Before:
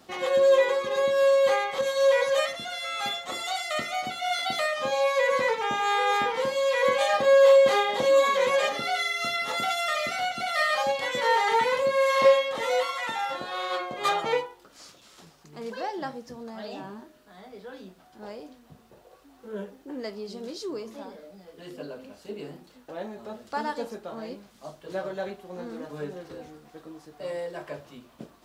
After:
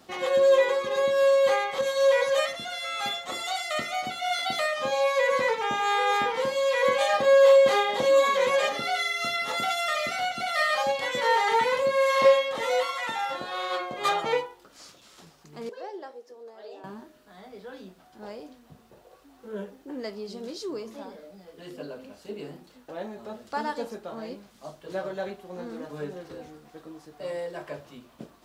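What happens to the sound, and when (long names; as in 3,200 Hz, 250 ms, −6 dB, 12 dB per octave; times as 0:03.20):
0:15.69–0:16.84: four-pole ladder high-pass 370 Hz, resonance 60%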